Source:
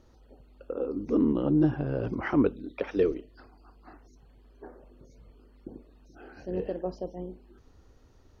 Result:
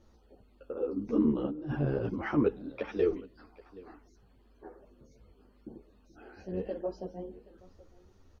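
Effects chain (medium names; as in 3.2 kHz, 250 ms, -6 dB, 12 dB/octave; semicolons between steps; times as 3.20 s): 1.45–1.98 s: compressor with a negative ratio -30 dBFS, ratio -1; delay 775 ms -21 dB; on a send at -22 dB: reverberation RT60 0.70 s, pre-delay 3 ms; on the sum: three-phase chorus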